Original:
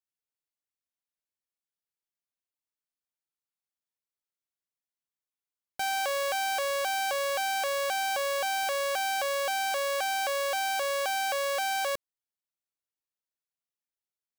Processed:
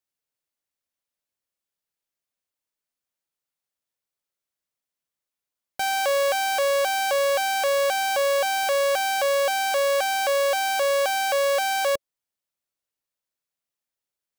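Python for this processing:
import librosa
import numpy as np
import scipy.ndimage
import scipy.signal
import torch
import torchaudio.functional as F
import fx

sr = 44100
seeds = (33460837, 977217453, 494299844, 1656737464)

y = fx.peak_eq(x, sr, hz=560.0, db=4.5, octaves=0.24)
y = y * librosa.db_to_amplitude(5.0)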